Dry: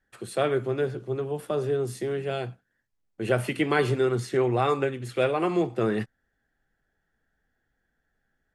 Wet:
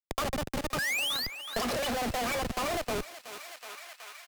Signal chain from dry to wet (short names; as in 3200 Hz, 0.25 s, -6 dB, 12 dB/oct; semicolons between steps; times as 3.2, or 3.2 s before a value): Doppler pass-by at 3.12, 9 m/s, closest 4.4 m; LPF 3800 Hz 12 dB/oct; bell 470 Hz -5.5 dB 1.4 oct; comb 3.4 ms, depth 71%; in parallel at -2 dB: compressor 12:1, threshold -41 dBFS, peak gain reduction 21.5 dB; on the sum: painted sound rise, 1.57–2.53, 780–2500 Hz -27 dBFS; Schmitt trigger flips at -39 dBFS; thinning echo 0.745 s, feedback 56%, high-pass 480 Hz, level -14.5 dB; speed mistake 7.5 ips tape played at 15 ips; three-band squash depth 70%; gain +2.5 dB